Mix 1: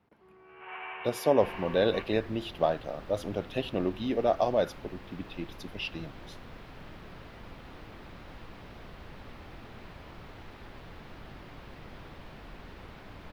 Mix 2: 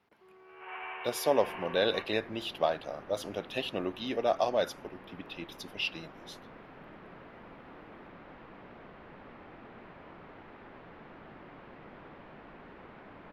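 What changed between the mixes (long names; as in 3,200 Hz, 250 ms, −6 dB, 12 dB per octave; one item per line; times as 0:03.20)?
speech: add spectral tilt +3 dB per octave
second sound: add three-way crossover with the lows and the highs turned down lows −15 dB, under 160 Hz, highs −17 dB, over 2,700 Hz
master: add high-shelf EQ 6,600 Hz −8 dB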